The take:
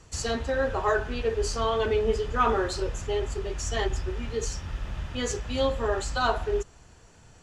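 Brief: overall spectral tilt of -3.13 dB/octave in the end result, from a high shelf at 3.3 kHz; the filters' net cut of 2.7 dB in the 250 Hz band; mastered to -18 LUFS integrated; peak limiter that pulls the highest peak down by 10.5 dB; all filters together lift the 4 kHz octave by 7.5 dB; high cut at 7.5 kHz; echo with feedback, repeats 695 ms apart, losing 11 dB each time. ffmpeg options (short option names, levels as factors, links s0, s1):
-af "lowpass=7500,equalizer=f=250:t=o:g=-3.5,highshelf=f=3300:g=5.5,equalizer=f=4000:t=o:g=6,alimiter=limit=0.1:level=0:latency=1,aecho=1:1:695|1390|2085:0.282|0.0789|0.0221,volume=3.98"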